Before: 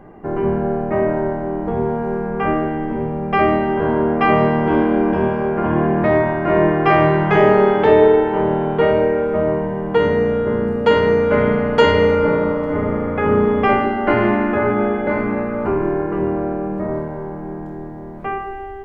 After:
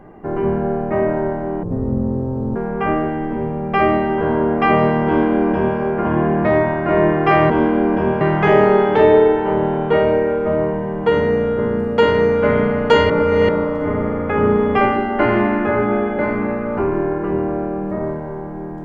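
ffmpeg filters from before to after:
-filter_complex "[0:a]asplit=7[a][b][c][d][e][f][g];[a]atrim=end=1.634[h];[b]atrim=start=1.63:end=2.15,asetpts=PTS-STARTPTS,asetrate=24696,aresample=44100[i];[c]atrim=start=2.146:end=7.092[j];[d]atrim=start=4.658:end=5.372[k];[e]atrim=start=7.088:end=11.982[l];[f]atrim=start=11.978:end=12.372,asetpts=PTS-STARTPTS,areverse[m];[g]atrim=start=12.368[n];[h][i]acrossfade=d=0.004:c1=hsin:c2=hsin[o];[o][j]acrossfade=d=0.004:c1=hsin:c2=hsin[p];[p][k]acrossfade=d=0.004:c1=hsin:c2=hsin[q];[q][l]acrossfade=d=0.004:c1=hsin:c2=hsin[r];[r][m]acrossfade=d=0.004:c1=hsin:c2=hsin[s];[s][n]acrossfade=d=0.004:c1=hsin:c2=hsin"

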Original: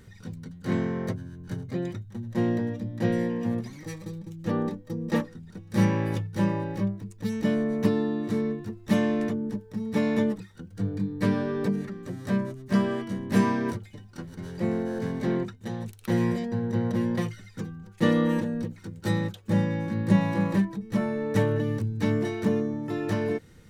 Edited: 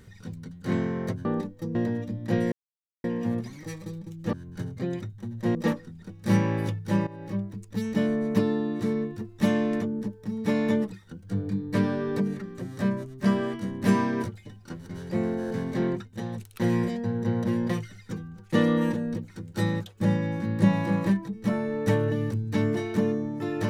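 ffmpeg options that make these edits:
-filter_complex "[0:a]asplit=7[a][b][c][d][e][f][g];[a]atrim=end=1.252[h];[b]atrim=start=4.528:end=5.032[i];[c]atrim=start=2.468:end=3.24,asetpts=PTS-STARTPTS,afade=t=out:st=0.768:d=0.004:c=hsin,apad=pad_dur=0.52[j];[d]atrim=start=3.24:end=4.532,asetpts=PTS-STARTPTS,afade=t=in:d=0.004:c=hsin[k];[e]atrim=start=1.248:end=2.472[l];[f]atrim=start=5.028:end=6.55,asetpts=PTS-STARTPTS,afade=t=out:st=1.518:d=0.004:c=hsin:silence=0.149624[m];[g]atrim=start=6.55,asetpts=PTS-STARTPTS,afade=t=in:d=0.44:silence=0.149624[n];[h][i]acrossfade=d=0.004:c1=hsin:c2=hsin[o];[j][k]concat=n=2:v=0:a=1[p];[o][p]acrossfade=d=0.004:c1=hsin:c2=hsin[q];[q][l]acrossfade=d=0.004:c1=hsin:c2=hsin[r];[m][n]concat=n=2:v=0:a=1[s];[r][s]acrossfade=d=0.004:c1=hsin:c2=hsin"

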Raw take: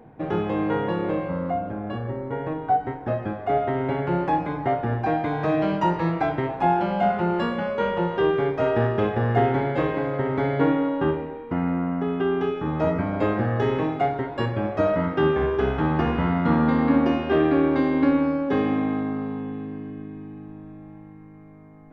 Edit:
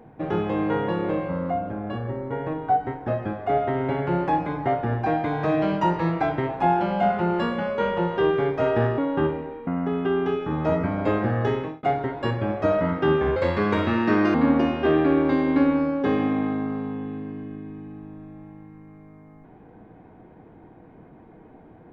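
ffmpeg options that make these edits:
-filter_complex "[0:a]asplit=6[a][b][c][d][e][f];[a]atrim=end=8.982[g];[b]atrim=start=10.818:end=11.512[h];[c]atrim=start=11.818:end=13.98,asetpts=PTS-STARTPTS,afade=t=out:st=1.792:d=0.37[i];[d]atrim=start=13.98:end=15.514,asetpts=PTS-STARTPTS,afade=t=in:d=0.004:c=hsin[j];[e]atrim=start=15.51:end=16.81,asetpts=PTS-STARTPTS,asetrate=58212,aresample=44100[k];[f]atrim=start=16.806[l];[g][h]acrossfade=d=0.004:c1=hsin:c2=hsin[m];[i][j]concat=n=2:v=0:a=1[n];[m][n]acrossfade=d=0.004:c1=hsin:c2=hsin[o];[o][k]acrossfade=d=0.004:c1=hsin:c2=hsin[p];[p][l]acrossfade=d=0.004:c1=hsin:c2=hsin"

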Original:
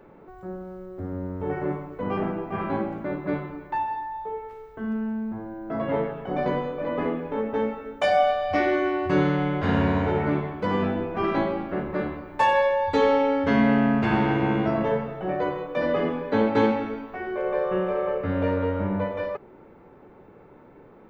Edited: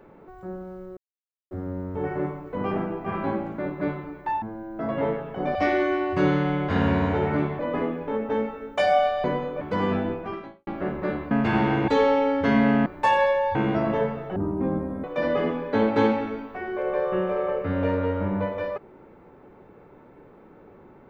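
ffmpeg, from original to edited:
-filter_complex "[0:a]asplit=14[a][b][c][d][e][f][g][h][i][j][k][l][m][n];[a]atrim=end=0.97,asetpts=PTS-STARTPTS,afade=t=out:st=0.966:d=0.004:c=hsin,apad=pad_dur=0.54[o];[b]atrim=start=0.97:end=3.882,asetpts=PTS-STARTPTS,afade=t=in:d=0.004:c=hsin[p];[c]atrim=start=5.328:end=6.462[q];[d]atrim=start=8.478:end=10.522[r];[e]atrim=start=6.828:end=8.482[s];[f]atrim=start=6.458:end=6.832[t];[g]atrim=start=10.518:end=11.58,asetpts=PTS-STARTPTS,afade=t=out:st=0.512:d=0.55:c=qua[u];[h]atrim=start=11.58:end=12.222,asetpts=PTS-STARTPTS,afade=t=in:d=0.004:c=hsin[v];[i]atrim=start=13.888:end=14.462[w];[j]atrim=start=12.908:end=13.892[x];[k]atrim=start=12.218:end=12.912[y];[l]atrim=start=14.458:end=15.274[z];[m]atrim=start=15.27:end=15.63,asetpts=PTS-STARTPTS,asetrate=23373,aresample=44100[aa];[n]atrim=start=15.626[ab];[o][p]concat=n=2:v=0:a=1[ac];[ac][q]acrossfade=d=0.004:c1=hsin:c2=hsin[ad];[ad][r]acrossfade=d=0.004:c1=hsin:c2=hsin[ae];[ae][s]acrossfade=d=0.004:c1=hsin:c2=hsin[af];[af][t]acrossfade=d=0.004:c1=hsin:c2=hsin[ag];[u][v]concat=n=2:v=0:a=1[ah];[ag][ah]acrossfade=d=0.004:c1=hsin:c2=hsin[ai];[ai][w]acrossfade=d=0.004:c1=hsin:c2=hsin[aj];[aj][x]acrossfade=d=0.004:c1=hsin:c2=hsin[ak];[ak][y]acrossfade=d=0.004:c1=hsin:c2=hsin[al];[al][z]acrossfade=d=0.004:c1=hsin:c2=hsin[am];[am][aa]acrossfade=d=0.004:c1=hsin:c2=hsin[an];[an][ab]acrossfade=d=0.004:c1=hsin:c2=hsin"

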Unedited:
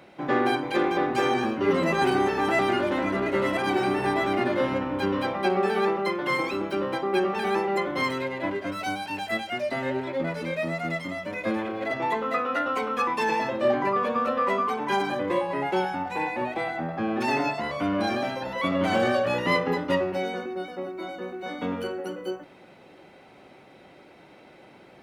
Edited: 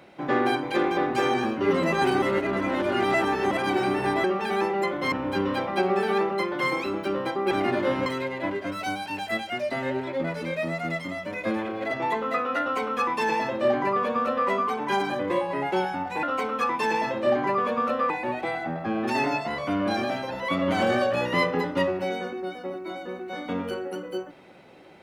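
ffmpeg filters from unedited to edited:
-filter_complex "[0:a]asplit=9[a][b][c][d][e][f][g][h][i];[a]atrim=end=2.222[j];[b]atrim=start=2.218:end=3.512,asetpts=PTS-STARTPTS,areverse[k];[c]atrim=start=3.508:end=4.242[l];[d]atrim=start=7.178:end=8.062[m];[e]atrim=start=4.788:end=7.182[n];[f]atrim=start=4.238:end=4.792[o];[g]atrim=start=8.058:end=16.232[p];[h]atrim=start=12.608:end=14.482[q];[i]atrim=start=16.228[r];[j][k]acrossfade=d=0.004:c1=hsin:c2=hsin[s];[s][l]acrossfade=d=0.004:c1=hsin:c2=hsin[t];[t][m]acrossfade=d=0.004:c1=hsin:c2=hsin[u];[u][n]acrossfade=d=0.004:c1=hsin:c2=hsin[v];[v][o]acrossfade=d=0.004:c1=hsin:c2=hsin[w];[w][p]acrossfade=d=0.004:c1=hsin:c2=hsin[x];[x][q]acrossfade=d=0.004:c1=hsin:c2=hsin[y];[y][r]acrossfade=d=0.004:c1=hsin:c2=hsin"

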